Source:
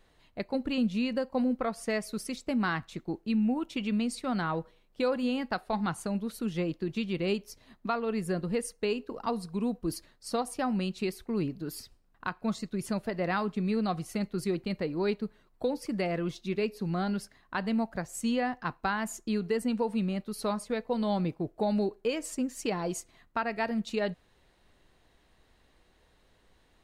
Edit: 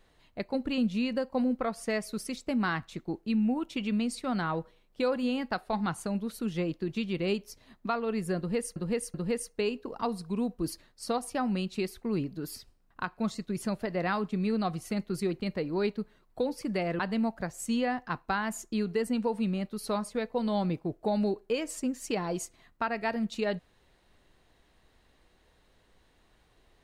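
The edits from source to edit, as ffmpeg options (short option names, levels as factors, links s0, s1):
-filter_complex "[0:a]asplit=4[s0][s1][s2][s3];[s0]atrim=end=8.762[s4];[s1]atrim=start=8.378:end=8.762[s5];[s2]atrim=start=8.378:end=16.232[s6];[s3]atrim=start=17.538[s7];[s4][s5]acrossfade=d=0.004:c1=hsin:c2=hsin[s8];[s8][s6]acrossfade=d=0.004:c1=hsin:c2=hsin[s9];[s9][s7]acrossfade=d=0.004:c1=hsin:c2=hsin"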